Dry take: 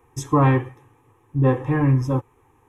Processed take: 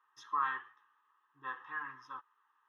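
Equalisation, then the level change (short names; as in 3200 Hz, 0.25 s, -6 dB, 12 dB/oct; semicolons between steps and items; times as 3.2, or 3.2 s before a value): ladder band-pass 1600 Hz, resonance 40%; high shelf 2100 Hz +10 dB; fixed phaser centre 2300 Hz, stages 6; 0.0 dB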